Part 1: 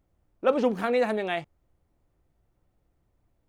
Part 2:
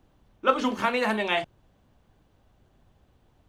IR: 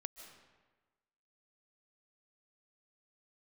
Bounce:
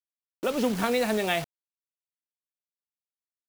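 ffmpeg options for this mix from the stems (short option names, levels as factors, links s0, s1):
-filter_complex "[0:a]volume=0.708,asplit=2[s0][s1];[1:a]highpass=f=440:w=0.5412,highpass=f=440:w=1.3066,tiltshelf=f=1200:g=6,volume=-1,volume=0.299[s2];[s1]apad=whole_len=153892[s3];[s2][s3]sidechaincompress=threshold=0.0224:ratio=8:attack=16:release=288[s4];[s0][s4]amix=inputs=2:normalize=0,acrossover=split=170|3000[s5][s6][s7];[s6]acompressor=threshold=0.0158:ratio=6[s8];[s5][s8][s7]amix=inputs=3:normalize=0,acrusher=bits=7:mix=0:aa=0.000001,dynaudnorm=f=120:g=7:m=3.76"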